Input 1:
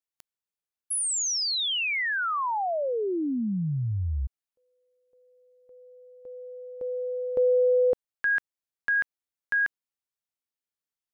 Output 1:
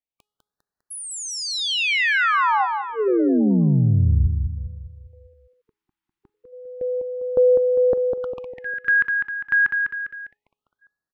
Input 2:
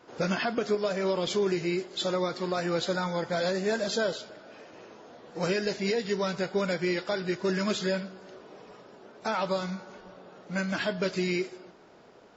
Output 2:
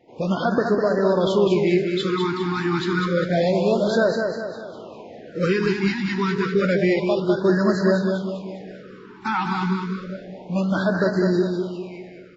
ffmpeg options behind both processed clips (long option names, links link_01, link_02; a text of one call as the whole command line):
ffmpeg -i in.wav -filter_complex "[0:a]dynaudnorm=framelen=110:gausssize=5:maxgain=8dB,bass=frequency=250:gain=2,treble=frequency=4000:gain=-14,bandreject=frequency=418.1:width_type=h:width=4,bandreject=frequency=836.2:width_type=h:width=4,bandreject=frequency=1254.3:width_type=h:width=4,bandreject=frequency=1672.4:width_type=h:width=4,bandreject=frequency=2090.5:width_type=h:width=4,bandreject=frequency=2508.6:width_type=h:width=4,bandreject=frequency=2926.7:width_type=h:width=4,bandreject=frequency=3344.8:width_type=h:width=4,bandreject=frequency=3762.9:width_type=h:width=4,bandreject=frequency=4181:width_type=h:width=4,bandreject=frequency=4599.1:width_type=h:width=4,bandreject=frequency=5017.2:width_type=h:width=4,bandreject=frequency=5435.3:width_type=h:width=4,bandreject=frequency=5853.4:width_type=h:width=4,bandreject=frequency=6271.5:width_type=h:width=4,bandreject=frequency=6689.6:width_type=h:width=4,bandreject=frequency=7107.7:width_type=h:width=4,bandreject=frequency=7525.8:width_type=h:width=4,bandreject=frequency=7943.9:width_type=h:width=4,bandreject=frequency=8362:width_type=h:width=4,bandreject=frequency=8780.1:width_type=h:width=4,bandreject=frequency=9198.2:width_type=h:width=4,bandreject=frequency=9616.3:width_type=h:width=4,bandreject=frequency=10034.4:width_type=h:width=4,bandreject=frequency=10452.5:width_type=h:width=4,bandreject=frequency=10870.6:width_type=h:width=4,bandreject=frequency=11288.7:width_type=h:width=4,bandreject=frequency=11706.8:width_type=h:width=4,bandreject=frequency=12124.9:width_type=h:width=4,bandreject=frequency=12543:width_type=h:width=4,bandreject=frequency=12961.1:width_type=h:width=4,bandreject=frequency=13379.2:width_type=h:width=4,bandreject=frequency=13797.3:width_type=h:width=4,bandreject=frequency=14215.4:width_type=h:width=4,asplit=2[link_01][link_02];[link_02]aecho=0:1:201|402|603|804|1005|1206:0.562|0.264|0.124|0.0584|0.0274|0.0129[link_03];[link_01][link_03]amix=inputs=2:normalize=0,afftfilt=real='re*(1-between(b*sr/1024,530*pow(2800/530,0.5+0.5*sin(2*PI*0.29*pts/sr))/1.41,530*pow(2800/530,0.5+0.5*sin(2*PI*0.29*pts/sr))*1.41))':imag='im*(1-between(b*sr/1024,530*pow(2800/530,0.5+0.5*sin(2*PI*0.29*pts/sr))/1.41,530*pow(2800/530,0.5+0.5*sin(2*PI*0.29*pts/sr))*1.41))':win_size=1024:overlap=0.75" out.wav